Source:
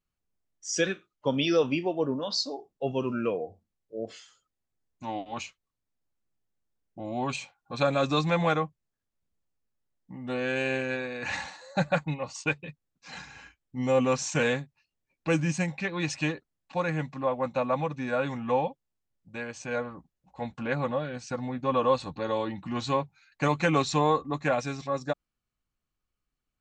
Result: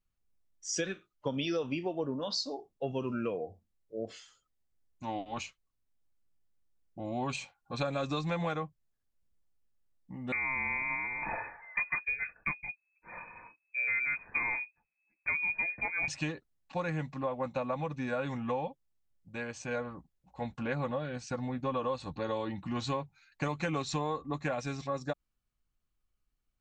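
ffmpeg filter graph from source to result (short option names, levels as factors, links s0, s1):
-filter_complex "[0:a]asettb=1/sr,asplit=3[s0][s1][s2];[s0]atrim=end=10.324[s3];[s1]atrim=start=10.32:end=16.08,asetpts=PTS-STARTPTS,afade=t=in:d=0.004:c=qsin,afade=t=out:st=5.756:d=0.004:c=qsin,lowshelf=f=220:g=7,lowpass=f=2200:t=q:w=0.5098,lowpass=f=2200:t=q:w=0.6013,lowpass=f=2200:t=q:w=0.9,lowpass=f=2200:t=q:w=2.563,afreqshift=-2600[s4];[s2]atrim=start=16.076[s5];[s3][s4]acrossfade=d=0.004:c1=hsin:c2=qsin[s6];[s6][s5]acrossfade=d=0.004:c1=qsin:c2=hsin,lowshelf=f=61:g=10.5,acompressor=threshold=0.0447:ratio=6,volume=0.75"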